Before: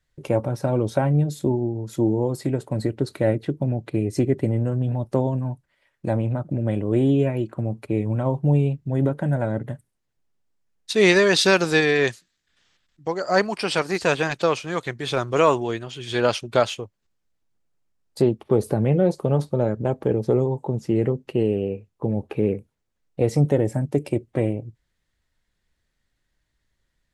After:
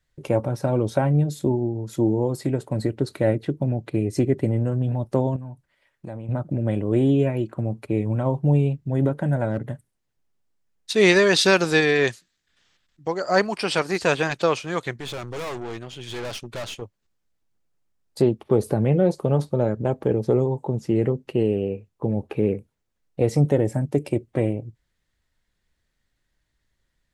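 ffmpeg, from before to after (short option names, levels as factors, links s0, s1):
-filter_complex "[0:a]asettb=1/sr,asplit=3[s0][s1][s2];[s0]atrim=end=5.364[s3];[s1]atrim=start=5.36:end=6.29,asetpts=PTS-STARTPTS,afade=t=in:d=0.004:c=qsin,afade=t=out:st=0.926:d=0.004:c=qsin,acompressor=threshold=0.0158:ratio=2.5:attack=3.2:release=140:knee=1:detection=peak[s4];[s2]atrim=start=6.286[s5];[s3][s4]acrossfade=d=0.004:c1=hsin:c2=qsin[s6];[s6][s5]acrossfade=d=0.004:c1=qsin:c2=hsin,asettb=1/sr,asplit=3[s7][s8][s9];[s7]atrim=end=9.494[s10];[s8]atrim=start=9.49:end=10.96,asetpts=PTS-STARTPTS,afade=t=in:d=0.004:c=qsin,afade=t=out:st=1.466:d=0.004:c=qsin,asoftclip=type=hard:threshold=0.15[s11];[s9]atrim=start=10.956[s12];[s10][s11]acrossfade=d=0.004:c1=hsin:c2=qsin[s13];[s13][s12]acrossfade=d=0.004:c1=qsin:c2=hsin,asettb=1/sr,asplit=3[s14][s15][s16];[s14]atrim=end=14.964[s17];[s15]atrim=start=14.96:end=16.82,asetpts=PTS-STARTPTS,afade=t=in:d=0.004:c=qsin,afade=t=out:st=1.856:d=0.004:c=qsin,aeval=exprs='(tanh(28.2*val(0)+0.55)-tanh(0.55))/28.2':c=same[s18];[s16]atrim=start=16.816[s19];[s17][s18]acrossfade=d=0.004:c1=hsin:c2=qsin[s20];[s20][s19]acrossfade=d=0.004:c1=qsin:c2=hsin"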